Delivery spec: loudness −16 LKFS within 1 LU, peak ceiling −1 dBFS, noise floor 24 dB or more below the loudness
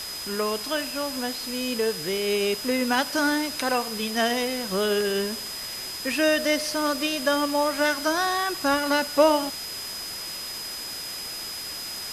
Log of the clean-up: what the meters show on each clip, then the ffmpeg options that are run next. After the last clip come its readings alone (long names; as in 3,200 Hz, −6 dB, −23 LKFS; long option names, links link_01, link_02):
interfering tone 5,000 Hz; level of the tone −34 dBFS; background noise floor −35 dBFS; target noise floor −50 dBFS; integrated loudness −25.5 LKFS; sample peak −6.0 dBFS; target loudness −16.0 LKFS
→ -af "bandreject=frequency=5000:width=30"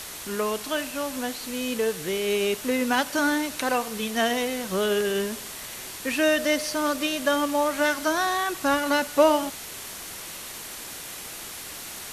interfering tone none found; background noise floor −38 dBFS; target noise floor −50 dBFS
→ -af "afftdn=noise_reduction=12:noise_floor=-38"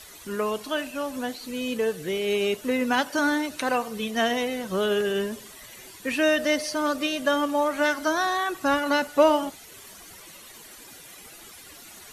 background noise floor −46 dBFS; target noise floor −50 dBFS
→ -af "afftdn=noise_reduction=6:noise_floor=-46"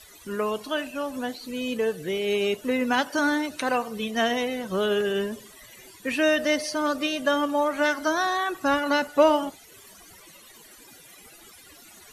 background noise floor −50 dBFS; integrated loudness −25.5 LKFS; sample peak −6.5 dBFS; target loudness −16.0 LKFS
→ -af "volume=9.5dB,alimiter=limit=-1dB:level=0:latency=1"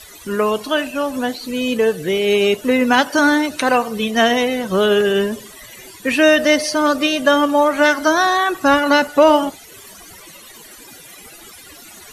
integrated loudness −16.0 LKFS; sample peak −1.0 dBFS; background noise floor −41 dBFS